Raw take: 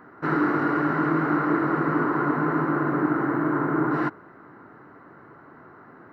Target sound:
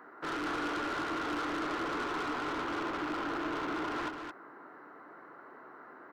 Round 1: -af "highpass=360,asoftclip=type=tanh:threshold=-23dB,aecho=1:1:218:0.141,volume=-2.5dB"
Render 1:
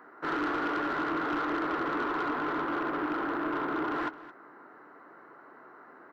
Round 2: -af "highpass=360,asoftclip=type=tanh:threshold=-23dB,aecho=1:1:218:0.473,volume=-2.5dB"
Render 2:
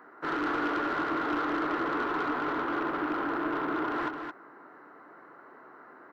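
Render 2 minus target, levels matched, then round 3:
soft clipping: distortion −7 dB
-af "highpass=360,asoftclip=type=tanh:threshold=-31dB,aecho=1:1:218:0.473,volume=-2.5dB"

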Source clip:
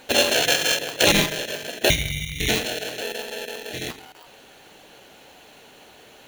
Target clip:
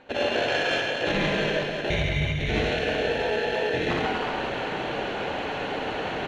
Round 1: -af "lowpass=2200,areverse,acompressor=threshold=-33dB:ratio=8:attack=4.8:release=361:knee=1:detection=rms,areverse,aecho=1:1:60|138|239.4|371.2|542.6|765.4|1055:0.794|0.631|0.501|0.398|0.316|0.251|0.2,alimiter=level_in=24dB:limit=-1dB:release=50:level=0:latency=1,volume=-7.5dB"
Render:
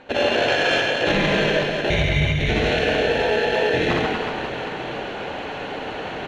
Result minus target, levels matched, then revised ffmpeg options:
downward compressor: peak gain reduction −6 dB
-af "lowpass=2200,areverse,acompressor=threshold=-40dB:ratio=8:attack=4.8:release=361:knee=1:detection=rms,areverse,aecho=1:1:60|138|239.4|371.2|542.6|765.4|1055:0.794|0.631|0.501|0.398|0.316|0.251|0.2,alimiter=level_in=24dB:limit=-1dB:release=50:level=0:latency=1,volume=-7.5dB"

